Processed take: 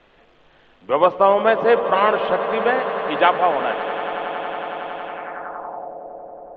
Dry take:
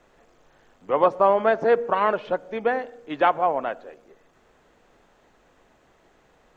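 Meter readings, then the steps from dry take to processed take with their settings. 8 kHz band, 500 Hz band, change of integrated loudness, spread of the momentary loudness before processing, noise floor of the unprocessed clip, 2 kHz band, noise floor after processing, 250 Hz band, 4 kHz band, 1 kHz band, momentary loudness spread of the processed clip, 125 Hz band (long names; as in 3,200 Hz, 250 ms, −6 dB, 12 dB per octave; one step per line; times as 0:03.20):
can't be measured, +4.5 dB, +3.0 dB, 11 LU, −61 dBFS, +7.0 dB, −54 dBFS, +4.0 dB, +11.5 dB, +5.0 dB, 16 LU, +4.5 dB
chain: echo that builds up and dies away 92 ms, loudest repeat 8, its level −16.5 dB
low-pass filter sweep 3,200 Hz → 620 Hz, 0:05.05–0:05.93
level +3 dB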